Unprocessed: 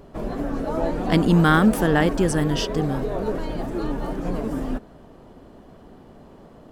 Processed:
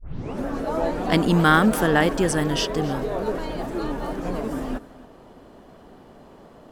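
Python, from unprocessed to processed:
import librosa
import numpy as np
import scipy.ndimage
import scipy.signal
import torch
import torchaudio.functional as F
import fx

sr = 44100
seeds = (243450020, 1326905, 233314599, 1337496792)

y = fx.tape_start_head(x, sr, length_s=0.46)
y = fx.low_shelf(y, sr, hz=320.0, db=-7.0)
y = y + 10.0 ** (-19.5 / 20.0) * np.pad(y, (int(272 * sr / 1000.0), 0))[:len(y)]
y = y * 10.0 ** (2.5 / 20.0)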